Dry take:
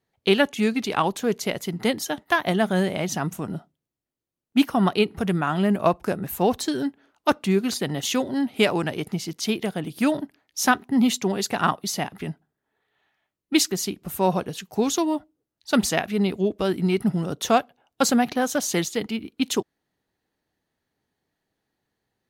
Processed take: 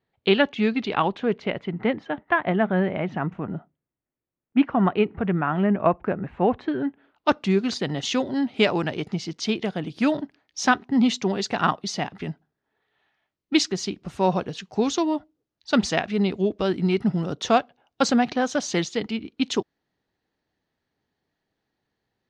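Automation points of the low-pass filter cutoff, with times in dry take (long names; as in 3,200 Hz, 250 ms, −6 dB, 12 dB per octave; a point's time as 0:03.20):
low-pass filter 24 dB per octave
0:00.78 4,100 Hz
0:01.91 2,400 Hz
0:06.83 2,400 Hz
0:07.39 5,900 Hz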